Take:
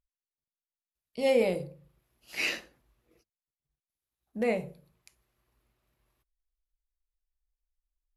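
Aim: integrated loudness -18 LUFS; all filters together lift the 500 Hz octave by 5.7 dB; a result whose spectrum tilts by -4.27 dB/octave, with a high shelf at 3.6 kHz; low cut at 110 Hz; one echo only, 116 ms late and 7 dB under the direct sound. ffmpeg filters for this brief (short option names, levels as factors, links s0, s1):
-af "highpass=110,equalizer=f=500:t=o:g=6,highshelf=f=3600:g=3.5,aecho=1:1:116:0.447,volume=2.24"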